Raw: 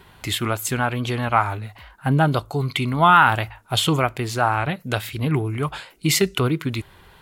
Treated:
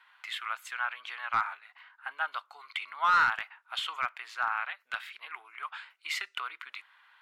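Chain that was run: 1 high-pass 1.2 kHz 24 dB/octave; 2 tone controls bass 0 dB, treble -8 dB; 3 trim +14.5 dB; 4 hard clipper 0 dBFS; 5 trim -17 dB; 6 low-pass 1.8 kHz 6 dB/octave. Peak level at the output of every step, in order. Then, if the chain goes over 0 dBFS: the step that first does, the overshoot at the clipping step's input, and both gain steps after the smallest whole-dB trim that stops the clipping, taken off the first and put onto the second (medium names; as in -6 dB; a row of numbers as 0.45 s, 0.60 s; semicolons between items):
-5.5 dBFS, -6.0 dBFS, +8.5 dBFS, 0.0 dBFS, -17.0 dBFS, -17.5 dBFS; step 3, 8.5 dB; step 3 +5.5 dB, step 5 -8 dB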